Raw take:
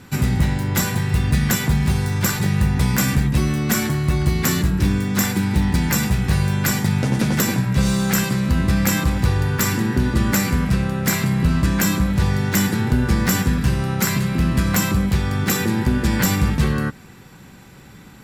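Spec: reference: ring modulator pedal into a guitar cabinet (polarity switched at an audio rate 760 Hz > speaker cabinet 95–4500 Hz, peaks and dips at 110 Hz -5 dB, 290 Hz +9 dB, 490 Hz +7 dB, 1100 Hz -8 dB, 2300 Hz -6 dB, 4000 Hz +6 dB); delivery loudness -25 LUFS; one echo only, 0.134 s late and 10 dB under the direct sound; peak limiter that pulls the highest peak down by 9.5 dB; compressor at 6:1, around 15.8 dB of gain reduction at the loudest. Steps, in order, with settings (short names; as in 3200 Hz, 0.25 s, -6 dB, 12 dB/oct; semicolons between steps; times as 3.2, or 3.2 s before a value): compressor 6:1, threshold -31 dBFS; limiter -29.5 dBFS; echo 0.134 s -10 dB; polarity switched at an audio rate 760 Hz; speaker cabinet 95–4500 Hz, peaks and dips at 110 Hz -5 dB, 290 Hz +9 dB, 490 Hz +7 dB, 1100 Hz -8 dB, 2300 Hz -6 dB, 4000 Hz +6 dB; gain +11.5 dB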